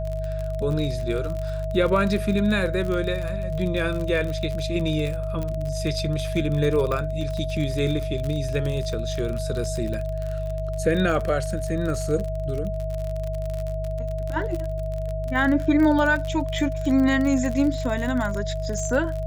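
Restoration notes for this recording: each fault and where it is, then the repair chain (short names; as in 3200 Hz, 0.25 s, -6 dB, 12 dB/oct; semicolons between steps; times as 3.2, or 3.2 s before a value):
crackle 45/s -27 dBFS
hum 50 Hz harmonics 3 -29 dBFS
tone 640 Hz -30 dBFS
5.43 pop -18 dBFS
6.92 pop -15 dBFS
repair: de-click; notch 640 Hz, Q 30; de-hum 50 Hz, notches 3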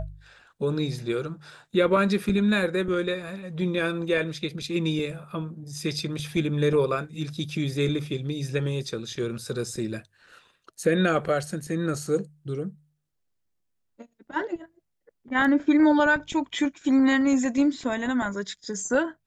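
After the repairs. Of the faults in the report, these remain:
none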